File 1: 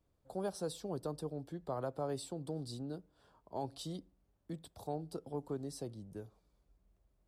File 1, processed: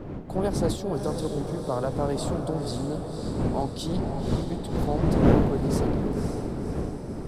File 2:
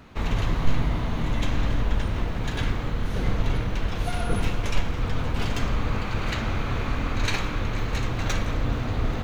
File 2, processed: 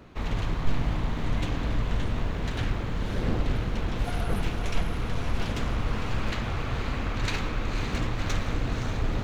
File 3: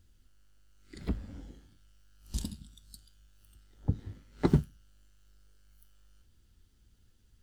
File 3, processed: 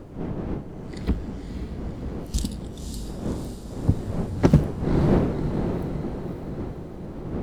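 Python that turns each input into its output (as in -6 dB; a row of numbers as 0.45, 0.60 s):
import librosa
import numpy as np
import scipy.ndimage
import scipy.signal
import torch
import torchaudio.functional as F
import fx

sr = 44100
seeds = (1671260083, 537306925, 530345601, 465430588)

y = fx.dmg_wind(x, sr, seeds[0], corner_hz=280.0, level_db=-39.0)
y = fx.echo_diffused(y, sr, ms=538, feedback_pct=57, wet_db=-6.0)
y = fx.doppler_dist(y, sr, depth_ms=0.56)
y = y * 10.0 ** (-26 / 20.0) / np.sqrt(np.mean(np.square(y)))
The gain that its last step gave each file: +10.5, -4.0, +8.5 dB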